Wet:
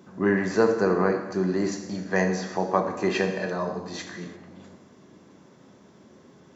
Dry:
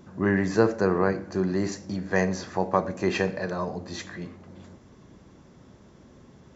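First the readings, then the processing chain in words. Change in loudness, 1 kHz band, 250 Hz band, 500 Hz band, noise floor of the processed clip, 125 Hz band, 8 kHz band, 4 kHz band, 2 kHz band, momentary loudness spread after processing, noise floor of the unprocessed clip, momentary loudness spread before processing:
+1.0 dB, +1.0 dB, +0.5 dB, +1.5 dB, −54 dBFS, −1.5 dB, can't be measured, +1.0 dB, +1.0 dB, 14 LU, −54 dBFS, 14 LU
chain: high-pass filter 160 Hz 12 dB per octave
reverb whose tail is shaped and stops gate 370 ms falling, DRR 5 dB

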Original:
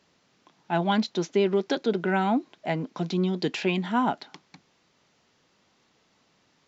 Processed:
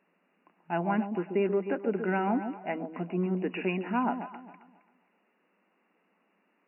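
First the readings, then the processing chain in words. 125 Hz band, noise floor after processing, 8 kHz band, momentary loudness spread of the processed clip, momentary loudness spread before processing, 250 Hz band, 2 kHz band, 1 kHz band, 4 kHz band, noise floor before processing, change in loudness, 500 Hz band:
−5.0 dB, −73 dBFS, can't be measured, 7 LU, 6 LU, −4.0 dB, −4.5 dB, −4.0 dB, −16.0 dB, −67 dBFS, −4.0 dB, −3.5 dB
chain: delay that swaps between a low-pass and a high-pass 134 ms, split 840 Hz, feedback 50%, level −7 dB
brick-wall band-pass 170–2,900 Hz
level −4.5 dB

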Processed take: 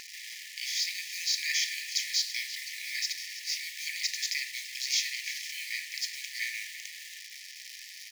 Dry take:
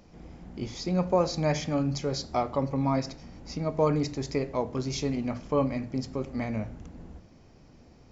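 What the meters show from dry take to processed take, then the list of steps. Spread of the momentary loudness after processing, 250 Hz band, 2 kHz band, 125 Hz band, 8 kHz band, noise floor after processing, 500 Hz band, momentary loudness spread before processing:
14 LU, below −40 dB, +10.5 dB, below −40 dB, can't be measured, −47 dBFS, below −40 dB, 18 LU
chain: compressor on every frequency bin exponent 0.6
in parallel at −7 dB: bit reduction 6 bits
on the sum: linear-phase brick-wall high-pass 1,700 Hz
single-tap delay 335 ms −14.5 dB
level +3 dB

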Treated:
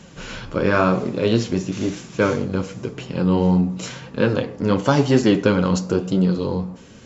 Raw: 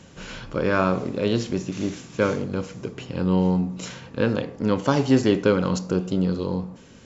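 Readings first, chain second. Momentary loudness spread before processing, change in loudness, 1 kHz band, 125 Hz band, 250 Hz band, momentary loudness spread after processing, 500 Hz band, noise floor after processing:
13 LU, +3.5 dB, +3.5 dB, +4.0 dB, +3.5 dB, 12 LU, +3.0 dB, −43 dBFS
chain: flanger 0.96 Hz, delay 4.6 ms, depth 7 ms, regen −35%
level +7.5 dB

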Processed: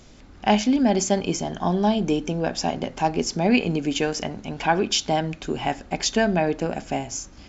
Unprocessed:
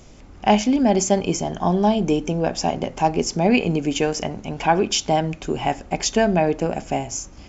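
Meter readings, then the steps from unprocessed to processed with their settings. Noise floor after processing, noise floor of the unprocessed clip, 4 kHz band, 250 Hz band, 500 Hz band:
−47 dBFS, −44 dBFS, 0.0 dB, −2.0 dB, −3.5 dB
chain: graphic EQ with 15 bands 250 Hz +3 dB, 1,600 Hz +5 dB, 4,000 Hz +7 dB
level −4 dB

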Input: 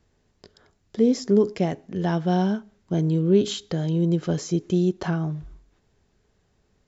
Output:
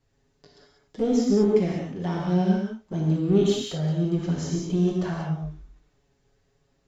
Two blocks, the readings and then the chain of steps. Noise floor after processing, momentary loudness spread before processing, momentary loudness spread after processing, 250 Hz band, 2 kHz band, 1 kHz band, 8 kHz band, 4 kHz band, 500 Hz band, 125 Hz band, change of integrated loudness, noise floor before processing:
−69 dBFS, 8 LU, 9 LU, −1.0 dB, −2.5 dB, −3.0 dB, can't be measured, −1.5 dB, −1.0 dB, −1.0 dB, −1.0 dB, −68 dBFS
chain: flanger swept by the level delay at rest 7.4 ms, full sweep at −16 dBFS
in parallel at −4 dB: asymmetric clip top −32.5 dBFS
on the sum: reverb whose tail is shaped and stops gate 220 ms flat, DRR −2.5 dB
level −6.5 dB

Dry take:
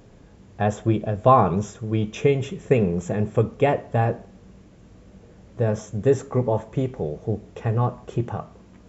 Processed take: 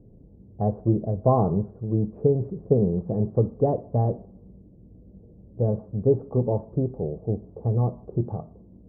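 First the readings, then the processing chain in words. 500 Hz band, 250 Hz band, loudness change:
−2.5 dB, −0.5 dB, −2.0 dB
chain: Bessel low-pass filter 540 Hz, order 6
low-pass that shuts in the quiet parts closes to 400 Hz, open at −21.5 dBFS

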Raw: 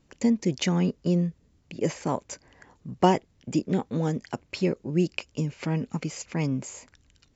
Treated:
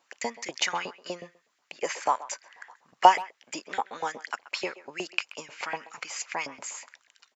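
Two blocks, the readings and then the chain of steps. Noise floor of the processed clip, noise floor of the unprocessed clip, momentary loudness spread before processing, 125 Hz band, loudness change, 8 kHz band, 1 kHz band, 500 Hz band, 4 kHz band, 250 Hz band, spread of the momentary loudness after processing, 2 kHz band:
−73 dBFS, −65 dBFS, 14 LU, below −25 dB, −2.0 dB, can't be measured, +7.0 dB, −5.5 dB, +3.5 dB, −19.0 dB, 18 LU, +6.0 dB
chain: auto-filter high-pass saw up 8.2 Hz 690–2,100 Hz
far-end echo of a speakerphone 130 ms, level −17 dB
level +2.5 dB

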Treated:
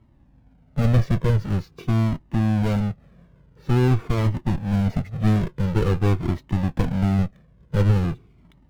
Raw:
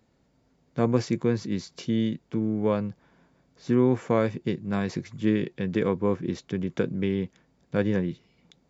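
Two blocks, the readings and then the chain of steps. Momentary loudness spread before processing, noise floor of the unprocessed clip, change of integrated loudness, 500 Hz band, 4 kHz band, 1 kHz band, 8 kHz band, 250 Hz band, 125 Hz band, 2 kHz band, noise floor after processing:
8 LU, −67 dBFS, +4.5 dB, −2.5 dB, +2.5 dB, +3.5 dB, can't be measured, +1.5 dB, +11.5 dB, +2.0 dB, −56 dBFS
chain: each half-wave held at its own peak
bass and treble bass +1 dB, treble −12 dB
asymmetric clip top −29.5 dBFS
low-shelf EQ 300 Hz +11.5 dB
flanger whose copies keep moving one way falling 0.47 Hz
level +1 dB

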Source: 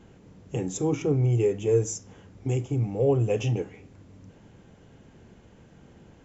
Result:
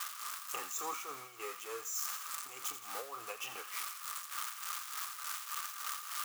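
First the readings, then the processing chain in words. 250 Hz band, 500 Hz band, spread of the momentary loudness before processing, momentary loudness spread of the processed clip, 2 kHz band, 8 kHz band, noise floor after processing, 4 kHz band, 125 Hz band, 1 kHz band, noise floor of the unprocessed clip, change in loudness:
−30.5 dB, −23.5 dB, 12 LU, 5 LU, +2.0 dB, can't be measured, −49 dBFS, +4.0 dB, below −40 dB, +2.0 dB, −55 dBFS, −13.5 dB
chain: spike at every zero crossing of −26.5 dBFS
downward compressor 3 to 1, threshold −28 dBFS, peak gain reduction 9 dB
amplitude tremolo 3.4 Hz, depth 68%
high-pass with resonance 1,200 Hz, resonance Q 12
on a send: delay with a high-pass on its return 84 ms, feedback 61%, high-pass 1,700 Hz, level −10 dB
on the sum: level +1 dB

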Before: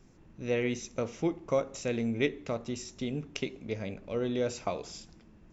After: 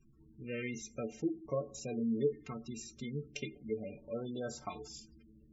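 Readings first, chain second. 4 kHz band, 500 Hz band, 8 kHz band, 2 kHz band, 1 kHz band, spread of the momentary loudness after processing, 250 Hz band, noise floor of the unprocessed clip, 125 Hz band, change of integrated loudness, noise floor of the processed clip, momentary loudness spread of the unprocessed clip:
−8.0 dB, −6.5 dB, can't be measured, −8.5 dB, −7.5 dB, 11 LU, −4.5 dB, −58 dBFS, −6.0 dB, −6.0 dB, −63 dBFS, 8 LU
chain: stiff-string resonator 66 Hz, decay 0.26 s, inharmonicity 0.03
auto-filter notch saw up 0.43 Hz 510–2,600 Hz
gate on every frequency bin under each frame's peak −20 dB strong
level +2.5 dB

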